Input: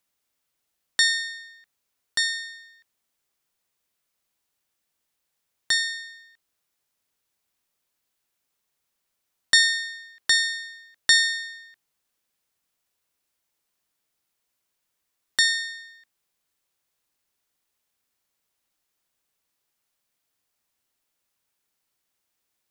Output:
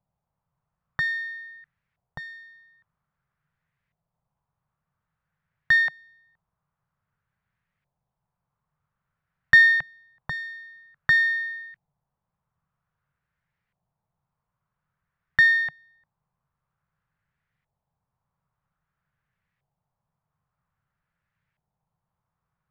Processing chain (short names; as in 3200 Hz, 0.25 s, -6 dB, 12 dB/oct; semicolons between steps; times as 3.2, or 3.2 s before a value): LFO low-pass saw up 0.51 Hz 760–2000 Hz; resonant low shelf 210 Hz +11.5 dB, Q 3